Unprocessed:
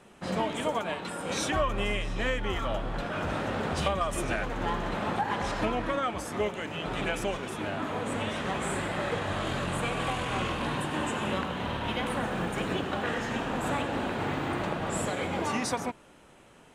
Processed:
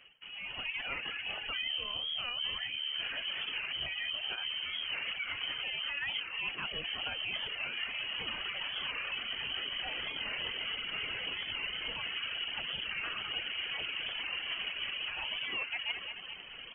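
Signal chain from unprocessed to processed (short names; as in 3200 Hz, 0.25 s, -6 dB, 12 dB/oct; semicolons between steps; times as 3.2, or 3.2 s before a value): limiter -23.5 dBFS, peak gain reduction 9.5 dB; low shelf 180 Hz +7.5 dB; feedback echo 0.216 s, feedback 46%, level -16 dB; reverse; compressor 10:1, threshold -41 dBFS, peak gain reduction 18 dB; reverse; reverb removal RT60 0.87 s; AGC gain up to 12.5 dB; on a send at -20 dB: reverb RT60 1.3 s, pre-delay 8 ms; on the sum: flange 1.2 Hz, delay 3.8 ms, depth 7.7 ms, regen +68%; inverted band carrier 3100 Hz; record warp 45 rpm, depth 100 cents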